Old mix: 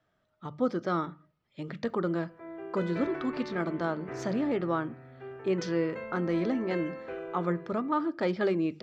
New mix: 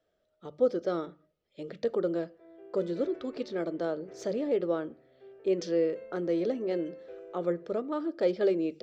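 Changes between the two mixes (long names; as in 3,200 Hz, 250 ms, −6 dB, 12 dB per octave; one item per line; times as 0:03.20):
background −10.0 dB
master: add octave-band graphic EQ 125/250/500/1,000/2,000 Hz −12/−5/+10/−12/−5 dB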